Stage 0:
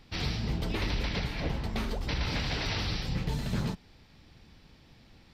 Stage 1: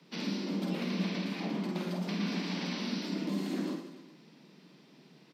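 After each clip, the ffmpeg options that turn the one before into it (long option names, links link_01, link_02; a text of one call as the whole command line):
ffmpeg -i in.wav -filter_complex "[0:a]acrossover=split=150[link_01][link_02];[link_02]acompressor=threshold=-35dB:ratio=6[link_03];[link_01][link_03]amix=inputs=2:normalize=0,afreqshift=140,aecho=1:1:50|112.5|190.6|288.3|410.4:0.631|0.398|0.251|0.158|0.1,volume=-4dB" out.wav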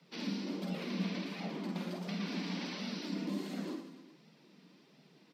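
ffmpeg -i in.wav -af "flanger=delay=1.4:depth=2.9:regen=-36:speed=1.4:shape=sinusoidal" out.wav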